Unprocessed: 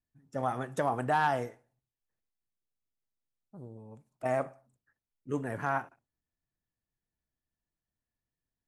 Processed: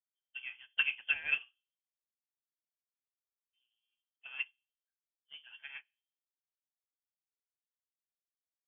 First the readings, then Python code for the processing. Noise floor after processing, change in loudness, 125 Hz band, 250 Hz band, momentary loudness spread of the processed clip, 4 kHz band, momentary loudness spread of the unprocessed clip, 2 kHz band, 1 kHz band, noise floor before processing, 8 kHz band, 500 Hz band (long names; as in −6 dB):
below −85 dBFS, −2.0 dB, below −30 dB, below −30 dB, 21 LU, can't be measured, 21 LU, +2.0 dB, −28.5 dB, below −85 dBFS, below −25 dB, below −30 dB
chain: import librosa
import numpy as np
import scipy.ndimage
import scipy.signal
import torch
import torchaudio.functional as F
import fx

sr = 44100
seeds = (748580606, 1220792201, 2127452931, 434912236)

y = scipy.signal.sosfilt(scipy.signal.butter(2, 42.0, 'highpass', fs=sr, output='sos'), x)
y = fx.peak_eq(y, sr, hz=2500.0, db=5.5, octaves=0.28)
y = fx.hpss(y, sr, part='harmonic', gain_db=-10)
y = fx.low_shelf(y, sr, hz=100.0, db=11.0)
y = fx.quant_float(y, sr, bits=2)
y = fx.small_body(y, sr, hz=(600.0, 1700.0), ring_ms=25, db=8)
y = fx.wow_flutter(y, sr, seeds[0], rate_hz=2.1, depth_cents=15.0)
y = fx.room_shoebox(y, sr, seeds[1], volume_m3=340.0, walls='furnished', distance_m=0.89)
y = fx.freq_invert(y, sr, carrier_hz=3300)
y = fx.upward_expand(y, sr, threshold_db=-45.0, expansion=2.5)
y = y * librosa.db_to_amplitude(-2.5)